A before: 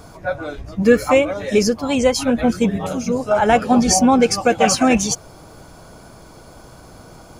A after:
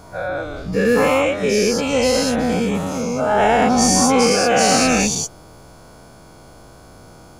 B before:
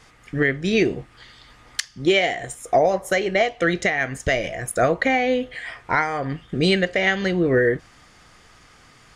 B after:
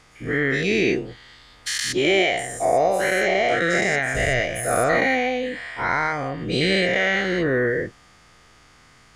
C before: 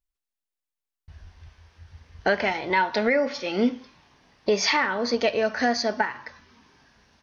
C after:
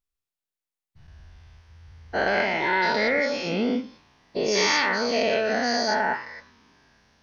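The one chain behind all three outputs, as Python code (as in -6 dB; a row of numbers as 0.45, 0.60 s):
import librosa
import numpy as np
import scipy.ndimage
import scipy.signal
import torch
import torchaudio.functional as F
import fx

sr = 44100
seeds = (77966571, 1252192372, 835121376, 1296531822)

y = fx.spec_dilate(x, sr, span_ms=240)
y = y * librosa.db_to_amplitude(-7.0)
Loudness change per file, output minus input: 0.0, +0.5, +0.5 LU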